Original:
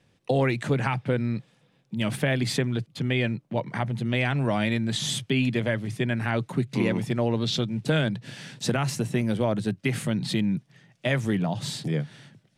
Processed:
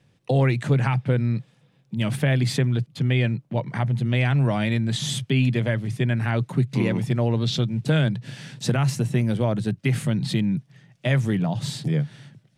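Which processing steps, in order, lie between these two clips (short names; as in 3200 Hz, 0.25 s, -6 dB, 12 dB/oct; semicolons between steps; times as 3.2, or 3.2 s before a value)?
bell 130 Hz +7.5 dB 0.73 oct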